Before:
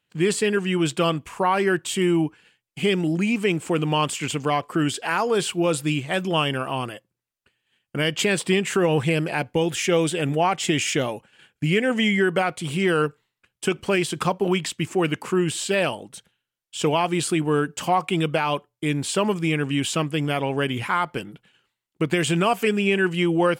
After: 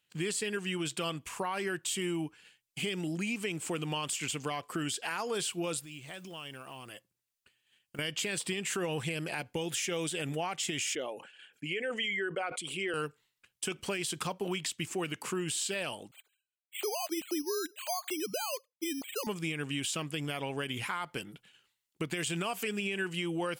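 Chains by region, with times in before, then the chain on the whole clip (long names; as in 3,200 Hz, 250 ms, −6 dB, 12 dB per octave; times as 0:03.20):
0:05.79–0:07.99: floating-point word with a short mantissa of 4 bits + downward compressor 5 to 1, threshold −38 dBFS
0:10.95–0:12.94: spectral envelope exaggerated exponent 1.5 + high-pass filter 330 Hz + level that may fall only so fast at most 140 dB per second
0:16.11–0:19.27: three sine waves on the formant tracks + notch filter 1,000 Hz, Q 9.5 + bad sample-rate conversion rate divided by 8×, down none, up hold
whole clip: high-shelf EQ 2,300 Hz +11 dB; brickwall limiter −10.5 dBFS; downward compressor 2 to 1, threshold −28 dBFS; level −7.5 dB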